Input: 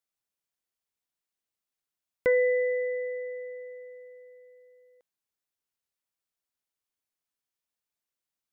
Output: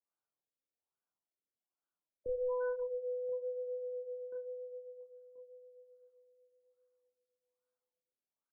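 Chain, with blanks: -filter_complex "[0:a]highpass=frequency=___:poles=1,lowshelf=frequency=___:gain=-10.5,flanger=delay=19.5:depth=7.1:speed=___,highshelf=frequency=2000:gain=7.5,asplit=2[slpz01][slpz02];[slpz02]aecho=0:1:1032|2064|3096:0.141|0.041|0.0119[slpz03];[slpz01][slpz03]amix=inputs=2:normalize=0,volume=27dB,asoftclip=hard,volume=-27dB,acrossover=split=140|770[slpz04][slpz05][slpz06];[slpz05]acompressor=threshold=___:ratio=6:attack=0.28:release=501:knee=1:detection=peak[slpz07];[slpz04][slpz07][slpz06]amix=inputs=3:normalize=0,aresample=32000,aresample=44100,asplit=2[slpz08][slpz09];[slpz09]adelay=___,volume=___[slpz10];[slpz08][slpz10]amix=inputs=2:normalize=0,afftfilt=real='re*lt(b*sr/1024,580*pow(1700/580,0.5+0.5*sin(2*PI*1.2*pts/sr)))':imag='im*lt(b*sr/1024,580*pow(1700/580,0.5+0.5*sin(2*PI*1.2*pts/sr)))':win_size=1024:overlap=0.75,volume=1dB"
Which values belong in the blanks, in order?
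57, 140, 0.78, -43dB, 30, -6dB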